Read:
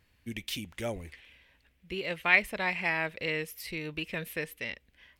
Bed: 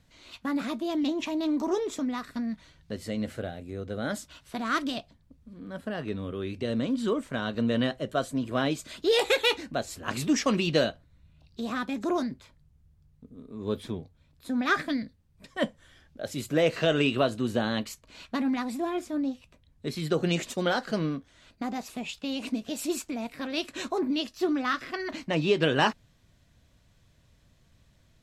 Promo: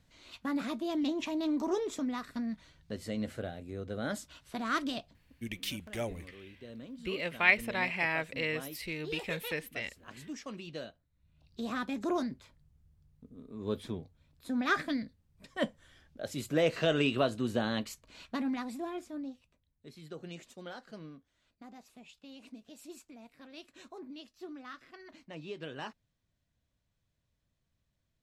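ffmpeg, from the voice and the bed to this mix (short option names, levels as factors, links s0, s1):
-filter_complex "[0:a]adelay=5150,volume=0.841[s0];[1:a]volume=3.16,afade=t=out:st=5.09:d=0.64:silence=0.199526,afade=t=in:st=11.13:d=0.46:silence=0.199526,afade=t=out:st=18.05:d=1.72:silence=0.188365[s1];[s0][s1]amix=inputs=2:normalize=0"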